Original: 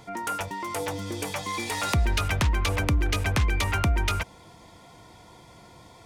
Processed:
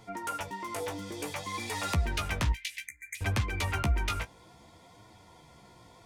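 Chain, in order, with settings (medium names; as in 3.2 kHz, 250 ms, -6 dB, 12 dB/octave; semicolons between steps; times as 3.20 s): 2.86–3.15 s: spectral selection erased 2.4–6.2 kHz; 2.52–3.21 s: elliptic high-pass 1.9 kHz, stop band 40 dB; flange 0.59 Hz, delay 8.9 ms, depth 9.6 ms, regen +20%; trim -2 dB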